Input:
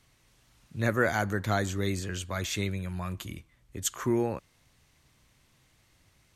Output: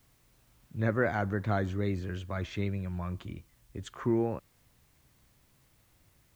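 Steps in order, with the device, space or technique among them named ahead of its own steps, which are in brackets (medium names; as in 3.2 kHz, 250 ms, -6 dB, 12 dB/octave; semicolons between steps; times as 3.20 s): cassette deck with a dirty head (tape spacing loss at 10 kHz 31 dB; wow and flutter; white noise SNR 36 dB)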